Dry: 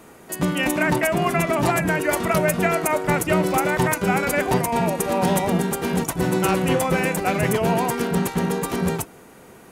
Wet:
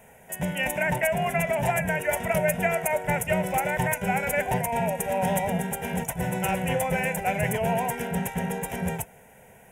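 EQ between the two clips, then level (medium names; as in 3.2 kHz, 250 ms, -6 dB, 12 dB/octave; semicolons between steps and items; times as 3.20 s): static phaser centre 1.2 kHz, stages 6; -2.0 dB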